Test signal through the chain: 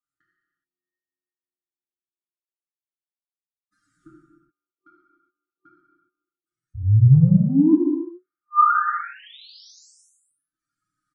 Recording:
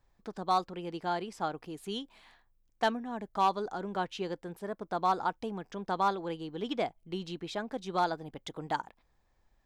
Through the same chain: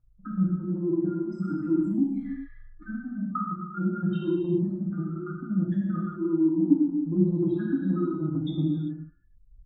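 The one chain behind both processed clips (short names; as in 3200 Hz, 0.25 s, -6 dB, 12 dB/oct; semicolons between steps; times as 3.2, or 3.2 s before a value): spectral contrast raised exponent 3.8; recorder AGC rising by 7.3 dB/s; treble ducked by the level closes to 1800 Hz, closed at -25 dBFS; FFT band-reject 370–1200 Hz; treble ducked by the level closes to 830 Hz, closed at -29 dBFS; comb 6.5 ms, depth 93%; transient shaper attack +3 dB, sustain -10 dB; in parallel at -2.5 dB: limiter -26 dBFS; on the sum: resonant high shelf 1800 Hz -13 dB, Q 3; non-linear reverb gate 0.44 s falling, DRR -5 dB; downsampling 22050 Hz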